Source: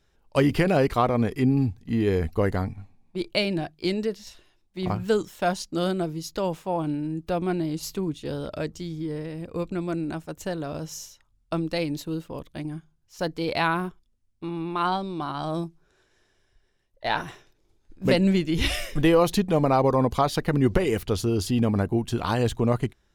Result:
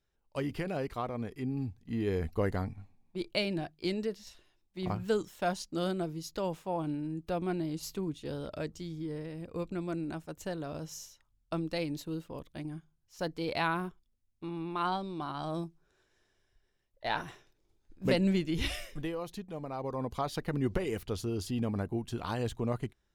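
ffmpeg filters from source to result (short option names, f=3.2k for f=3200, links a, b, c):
-af "volume=2dB,afade=t=in:st=1.46:d=0.9:silence=0.446684,afade=t=out:st=18.49:d=0.64:silence=0.251189,afade=t=in:st=19.71:d=0.67:silence=0.354813"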